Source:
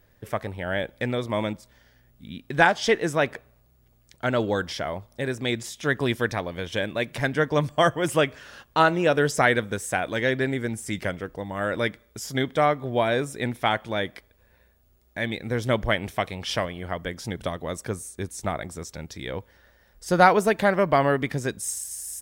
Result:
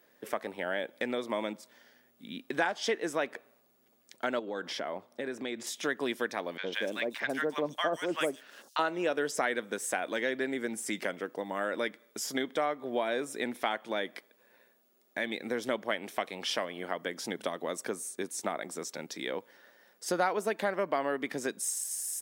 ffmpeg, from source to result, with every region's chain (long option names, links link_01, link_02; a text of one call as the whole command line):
ffmpeg -i in.wav -filter_complex "[0:a]asettb=1/sr,asplit=3[link_01][link_02][link_03];[link_01]atrim=end=4.394[link_04];[link_02]atrim=start=4.39:end=5.67,asetpts=PTS-STARTPTS,afade=type=in:duration=0.004:curve=qsin,afade=type=out:start_time=1.276:duration=0.004:curve=qsin,highshelf=frequency=4500:gain=-9,acompressor=threshold=-30dB:ratio=4:attack=3.2:release=140:knee=1:detection=peak[link_05];[link_03]atrim=start=5.666[link_06];[link_04][link_05]acrossfade=duration=0.004:curve1=hsin:curve2=qsin[link_07];[link_07][link_06]acrossfade=duration=0.004:curve1=qsin:curve2=hsin,asettb=1/sr,asplit=3[link_08][link_09][link_10];[link_08]atrim=end=6.574[link_11];[link_09]atrim=start=6.57:end=8.79,asetpts=PTS-STARTPTS,afade=type=in:duration=0.004:curve=qsin,afade=type=out:start_time=2.216:duration=0.004:curve=qsin,aeval=exprs='sgn(val(0))*max(abs(val(0))-0.00376,0)':channel_layout=same,acrossover=split=1000|5300[link_12][link_13][link_14];[link_12]adelay=60[link_15];[link_14]adelay=150[link_16];[link_15][link_13][link_16]amix=inputs=3:normalize=0,atrim=end_sample=97902[link_17];[link_10]atrim=start=8.786[link_18];[link_11][link_17]acrossfade=duration=0.004:curve1=hsin:curve2=qsin[link_19];[link_19][link_18]acrossfade=duration=0.004:curve1=qsin:curve2=hsin,highpass=frequency=230:width=0.5412,highpass=frequency=230:width=1.3066,acompressor=threshold=-31dB:ratio=2.5" out.wav